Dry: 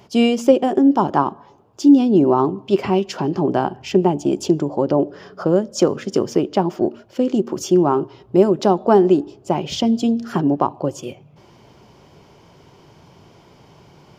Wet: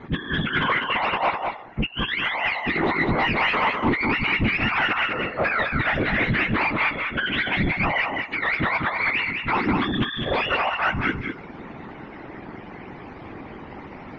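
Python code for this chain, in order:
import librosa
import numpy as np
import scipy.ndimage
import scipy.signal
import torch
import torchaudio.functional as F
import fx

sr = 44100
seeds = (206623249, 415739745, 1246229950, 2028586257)

y = fx.octave_mirror(x, sr, pivot_hz=890.0)
y = scipy.signal.sosfilt(scipy.signal.butter(2, 180.0, 'highpass', fs=sr, output='sos'), y)
y = fx.peak_eq(y, sr, hz=390.0, db=5.0, octaves=1.5)
y = fx.over_compress(y, sr, threshold_db=-24.0, ratio=-0.5)
y = fx.whisperise(y, sr, seeds[0])
y = 10.0 ** (-24.0 / 20.0) * np.tanh(y / 10.0 ** (-24.0 / 20.0))
y = scipy.signal.sosfilt(scipy.signal.butter(4, 2600.0, 'lowpass', fs=sr, output='sos'), y)
y = y + 10.0 ** (-4.5 / 20.0) * np.pad(y, (int(203 * sr / 1000.0), 0))[:len(y)]
y = y * librosa.db_to_amplitude(7.0)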